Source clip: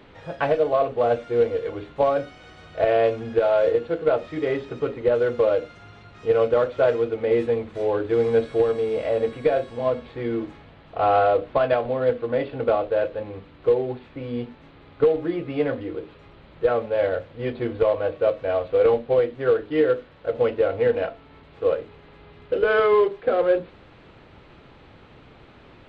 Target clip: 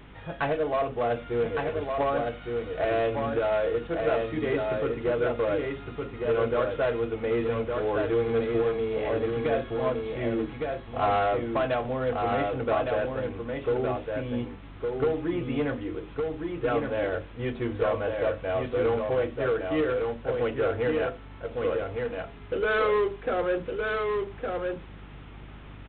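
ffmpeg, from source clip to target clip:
ffmpeg -i in.wav -af "equalizer=frequency=530:width=2:gain=-6.5,aresample=8000,asoftclip=type=tanh:threshold=-19.5dB,aresample=44100,aeval=exprs='val(0)+0.00355*(sin(2*PI*50*n/s)+sin(2*PI*2*50*n/s)/2+sin(2*PI*3*50*n/s)/3+sin(2*PI*4*50*n/s)/4+sin(2*PI*5*50*n/s)/5)':channel_layout=same,aecho=1:1:1161:0.631" out.wav

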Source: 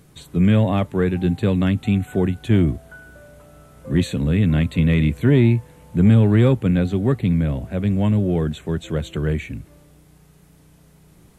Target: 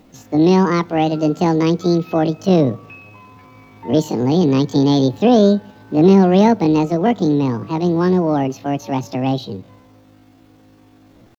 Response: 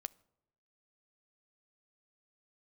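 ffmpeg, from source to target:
-filter_complex "[0:a]asetrate=76340,aresample=44100,atempo=0.577676,asplit=2[link_01][link_02];[1:a]atrim=start_sample=2205,lowpass=7000[link_03];[link_02][link_03]afir=irnorm=-1:irlink=0,volume=7dB[link_04];[link_01][link_04]amix=inputs=2:normalize=0,volume=-5dB"

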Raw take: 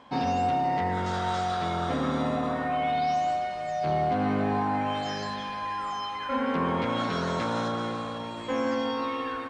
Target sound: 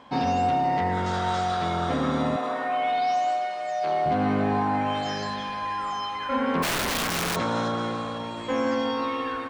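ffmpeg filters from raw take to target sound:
ffmpeg -i in.wav -filter_complex "[0:a]asettb=1/sr,asplit=3[link_01][link_02][link_03];[link_01]atrim=end=2.364[link_04];[link_02]atrim=start=2.36:end=4.06,asetpts=PTS-STARTPTS,afade=type=in:duration=0.004:curve=qsin,afade=type=out:start_time=1.696:duration=0.004:curve=qsin,highpass=390[link_05];[link_03]atrim=start=4.056[link_06];[link_04][link_05]acrossfade=duration=0.004:curve1=hsin:curve2=qsin[link_07];[link_07][link_06]acrossfade=duration=0.004:curve1=qsin:curve2=hsin,asplit=3[link_08][link_09][link_10];[link_08]afade=type=out:start_time=6.62:duration=0.02[link_11];[link_09]aeval=exprs='(mod(15*val(0)+1,2)-1)/15':channel_layout=same,afade=type=in:start_time=6.62:duration=0.02,afade=type=out:start_time=7.35:duration=0.02[link_12];[link_10]afade=type=in:start_time=7.35:duration=0.02[link_13];[link_11][link_12][link_13]amix=inputs=3:normalize=0,volume=2.5dB" out.wav

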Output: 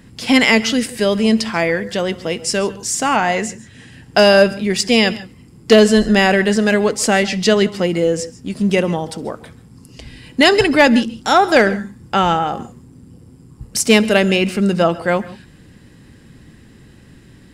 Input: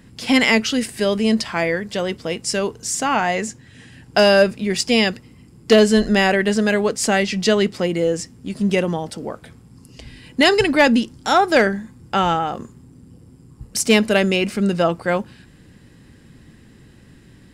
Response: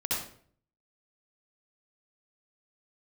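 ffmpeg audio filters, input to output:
-filter_complex "[0:a]asplit=2[link_01][link_02];[1:a]atrim=start_sample=2205,atrim=end_sample=4410,adelay=69[link_03];[link_02][link_03]afir=irnorm=-1:irlink=0,volume=-22.5dB[link_04];[link_01][link_04]amix=inputs=2:normalize=0,volume=3dB"

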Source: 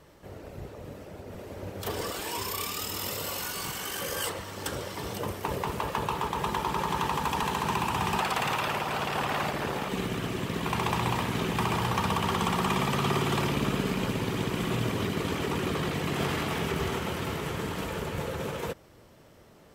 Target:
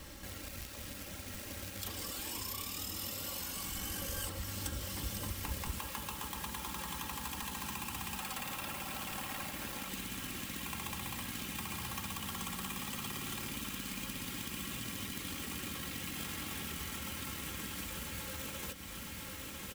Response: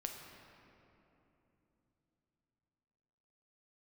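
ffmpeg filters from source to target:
-filter_complex "[0:a]aecho=1:1:3.7:0.59,acrusher=bits=3:mode=log:mix=0:aa=0.000001,equalizer=frequency=640:width=0.43:gain=-11,bandreject=frequency=480:width=13,aecho=1:1:1000|2000|3000|4000|5000|6000:0.2|0.118|0.0695|0.041|0.0242|0.0143,acrossover=split=1100|8000[link_01][link_02][link_03];[link_01]acompressor=threshold=-59dB:ratio=4[link_04];[link_02]acompressor=threshold=-59dB:ratio=4[link_05];[link_03]acompressor=threshold=-57dB:ratio=4[link_06];[link_04][link_05][link_06]amix=inputs=3:normalize=0,asettb=1/sr,asplit=3[link_07][link_08][link_09];[link_07]atrim=end=3.714[link_10];[link_08]atrim=start=3.71:end=5.78,asetpts=PTS-STARTPTS,afade=type=in:duration=0.004:curve=qsin,afade=type=out:start_time=2.066:duration=0.004:curve=qsin,lowshelf=frequency=120:gain=12[link_11];[link_09]atrim=start=5.776[link_12];[link_10][link_11]acrossfade=duration=0.004:curve1=hsin:curve2=qsin[link_13];[link_13][link_12]acrossfade=duration=0.004:curve1=qsin:curve2=hsin,volume=11dB"

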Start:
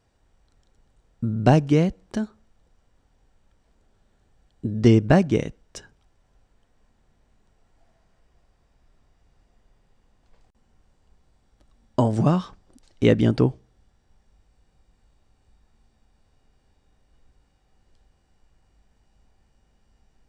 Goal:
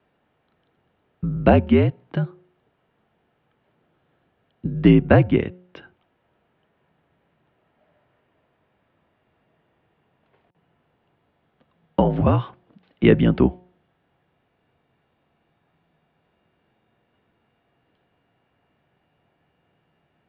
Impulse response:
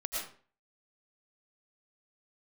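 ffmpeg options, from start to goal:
-af "highpass=frequency=170:width_type=q:width=0.5412,highpass=frequency=170:width_type=q:width=1.307,lowpass=frequency=3300:width_type=q:width=0.5176,lowpass=frequency=3300:width_type=q:width=0.7071,lowpass=frequency=3300:width_type=q:width=1.932,afreqshift=-62,bandreject=frequency=180.6:width_type=h:width=4,bandreject=frequency=361.2:width_type=h:width=4,bandreject=frequency=541.8:width_type=h:width=4,bandreject=frequency=722.4:width_type=h:width=4,bandreject=frequency=903:width_type=h:width=4,volume=4dB"

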